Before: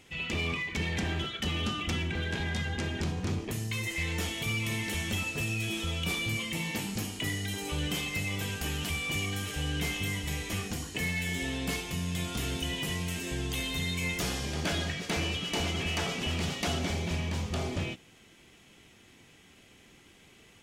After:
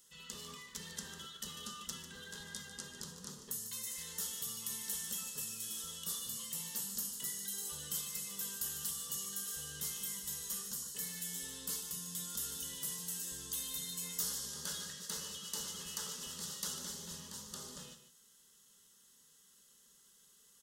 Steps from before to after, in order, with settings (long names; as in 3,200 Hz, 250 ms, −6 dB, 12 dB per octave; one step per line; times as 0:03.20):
first-order pre-emphasis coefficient 0.9
phaser with its sweep stopped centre 470 Hz, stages 8
on a send: single-tap delay 148 ms −11.5 dB
on the sum: level +2.5 dB